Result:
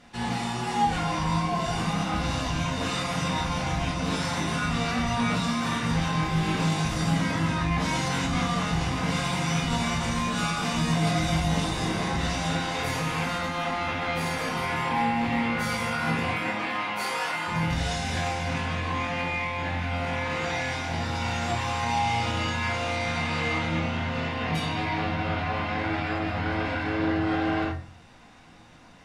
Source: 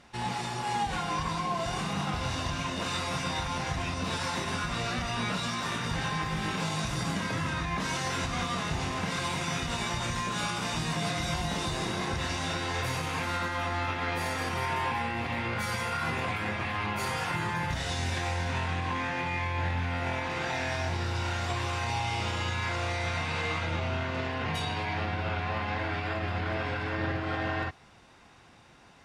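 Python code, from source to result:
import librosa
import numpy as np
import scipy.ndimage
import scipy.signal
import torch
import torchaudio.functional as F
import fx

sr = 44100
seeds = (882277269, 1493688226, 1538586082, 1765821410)

y = fx.highpass(x, sr, hz=fx.line((16.24, 160.0), (17.47, 520.0)), slope=12, at=(16.24, 17.47), fade=0.02)
y = fx.room_shoebox(y, sr, seeds[0], volume_m3=270.0, walls='furnished', distance_m=1.9)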